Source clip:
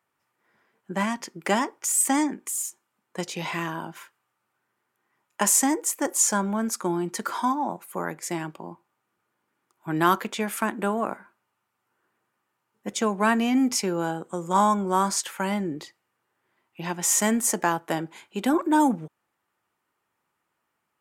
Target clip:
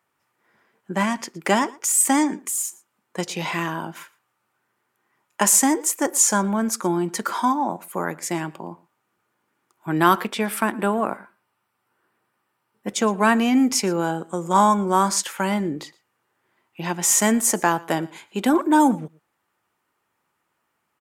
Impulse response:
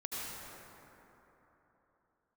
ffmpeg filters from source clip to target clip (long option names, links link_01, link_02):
-filter_complex "[0:a]asettb=1/sr,asplit=3[link_01][link_02][link_03];[link_01]atrim=end=9.944[link_04];[link_02]atrim=start=9.94:end=12.94,asetpts=PTS-STARTPTS,afade=type=in:duration=0.004:curve=qsin,afade=type=out:start_time=2.996:duration=0.004:curve=qsin,bandreject=frequency=6700:width=5.1[link_05];[link_03]atrim=start=12.936[link_06];[link_04][link_05]acrossfade=duration=0.004:curve1=hsin:curve2=qsin[link_07];[link_07][link_06]acrossfade=duration=0.004:curve1=qsin:curve2=hsin,aecho=1:1:116:0.075,volume=4dB"